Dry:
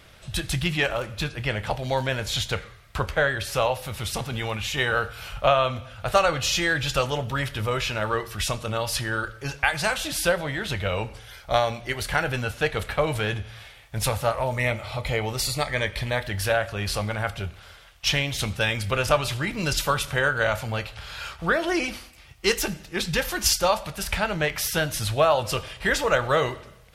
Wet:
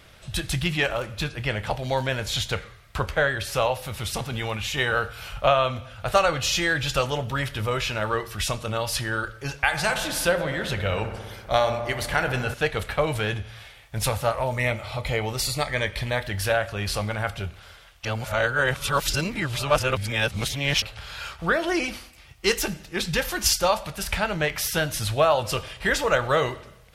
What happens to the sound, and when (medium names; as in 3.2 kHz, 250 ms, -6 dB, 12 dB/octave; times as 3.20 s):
9.65–12.54 s: feedback echo behind a low-pass 62 ms, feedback 77%, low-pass 1.7 kHz, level -9.5 dB
18.05–20.82 s: reverse